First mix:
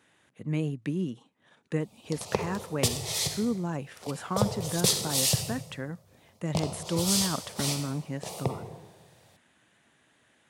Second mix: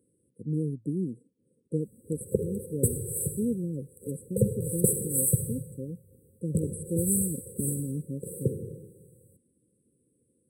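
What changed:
background +3.5 dB
master: add linear-phase brick-wall band-stop 550–7,700 Hz

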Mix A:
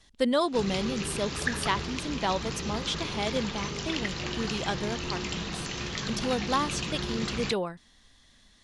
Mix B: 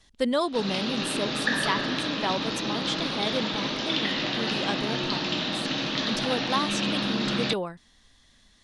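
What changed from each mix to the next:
background: add loudspeaker in its box 260–5,100 Hz, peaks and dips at 280 Hz +8 dB, 400 Hz −9 dB, 590 Hz +6 dB, 2,200 Hz −4 dB, 3,700 Hz +7 dB
reverb: on, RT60 2.8 s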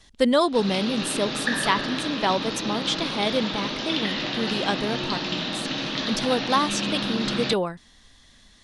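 speech +5.5 dB

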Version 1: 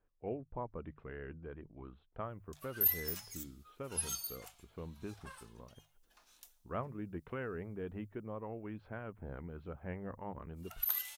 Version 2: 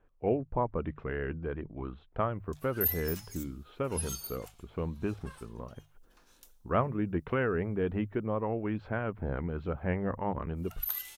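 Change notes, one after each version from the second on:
speech +11.5 dB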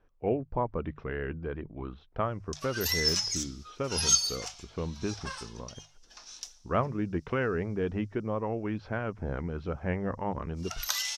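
background +11.5 dB
master: add low-pass with resonance 5,600 Hz, resonance Q 5.1

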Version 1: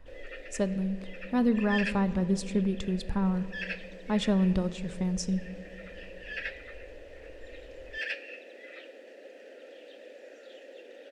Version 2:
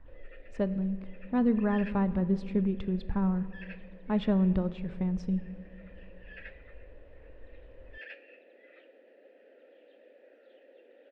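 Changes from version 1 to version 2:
background −7.5 dB
master: add high-frequency loss of the air 390 metres

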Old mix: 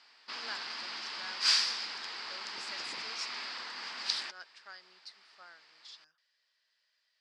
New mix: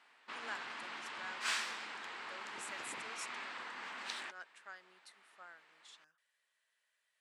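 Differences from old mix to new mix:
background: add high-frequency loss of the air 86 metres
master: remove low-pass with resonance 4,900 Hz, resonance Q 7.8

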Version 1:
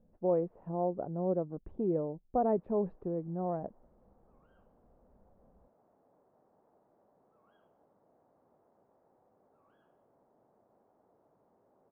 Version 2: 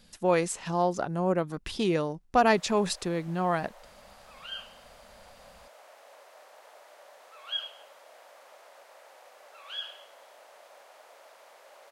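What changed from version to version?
background: add high-pass with resonance 570 Hz, resonance Q 5.1
master: remove transistor ladder low-pass 770 Hz, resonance 25%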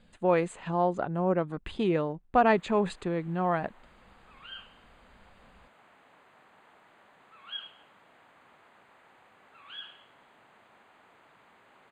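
background: remove high-pass with resonance 570 Hz, resonance Q 5.1
master: add moving average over 8 samples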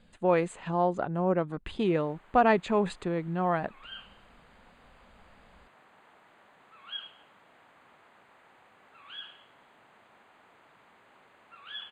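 background: entry −0.60 s

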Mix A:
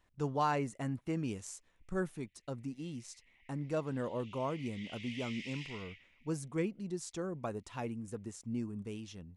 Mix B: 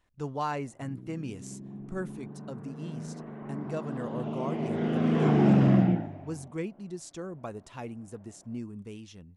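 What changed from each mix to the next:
background: remove Butterworth high-pass 2,000 Hz 96 dB per octave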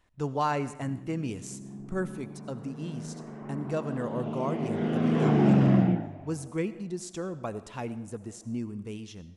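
reverb: on, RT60 0.85 s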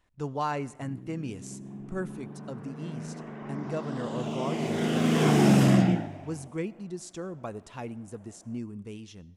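speech: send −9.5 dB
background: remove head-to-tape spacing loss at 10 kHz 35 dB

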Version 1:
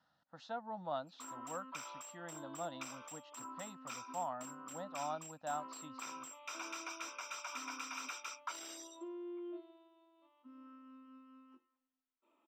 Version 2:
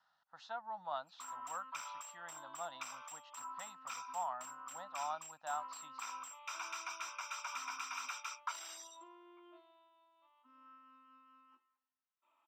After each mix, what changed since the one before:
master: add low shelf with overshoot 600 Hz −13.5 dB, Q 1.5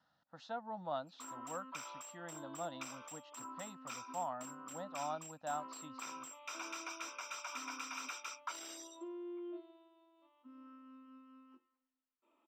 master: add low shelf with overshoot 600 Hz +13.5 dB, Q 1.5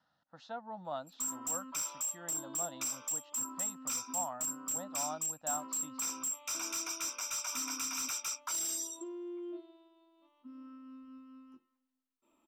background: remove three-way crossover with the lows and the highs turned down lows −19 dB, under 290 Hz, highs −21 dB, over 3,900 Hz

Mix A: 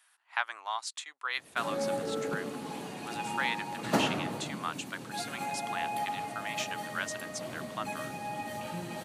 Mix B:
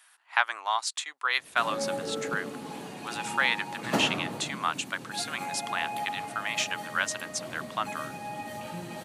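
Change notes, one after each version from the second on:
speech +7.0 dB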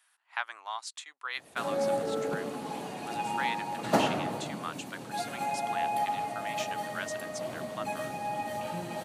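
speech −9.5 dB
background: add parametric band 690 Hz +5.5 dB 0.97 octaves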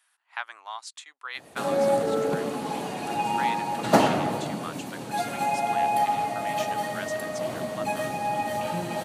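background +6.5 dB

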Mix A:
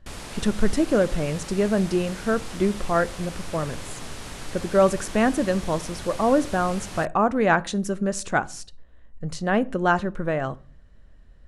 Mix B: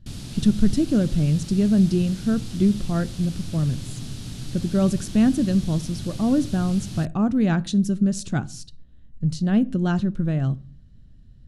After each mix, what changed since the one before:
master: add octave-band graphic EQ 125/250/500/1,000/2,000/4,000/8,000 Hz +12/+5/−9/−11/−9/+4/−3 dB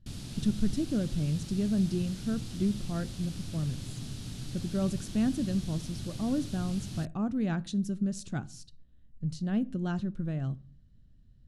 speech −10.0 dB
background −5.5 dB

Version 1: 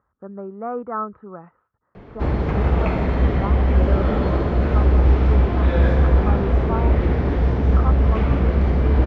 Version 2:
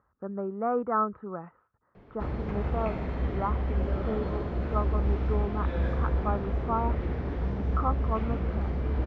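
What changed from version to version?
background −12.0 dB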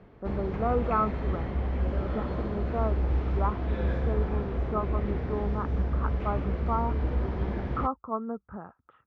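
background: entry −1.95 s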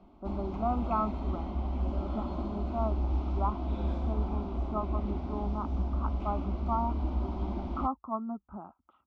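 master: add phaser with its sweep stopped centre 470 Hz, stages 6

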